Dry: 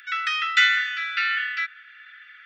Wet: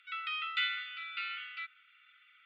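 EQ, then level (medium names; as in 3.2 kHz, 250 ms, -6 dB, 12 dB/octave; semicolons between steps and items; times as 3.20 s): Butterworth band-stop 930 Hz, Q 2.8; distance through air 87 m; static phaser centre 1.7 kHz, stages 6; -8.5 dB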